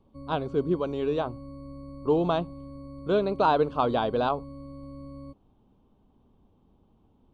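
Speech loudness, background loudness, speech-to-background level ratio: −27.0 LKFS, −43.5 LKFS, 16.5 dB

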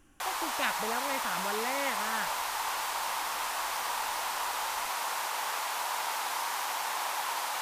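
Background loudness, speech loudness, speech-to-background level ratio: −32.5 LKFS, −36.5 LKFS, −4.0 dB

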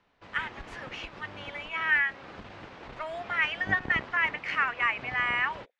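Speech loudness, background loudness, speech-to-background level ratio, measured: −28.0 LKFS, −44.0 LKFS, 16.0 dB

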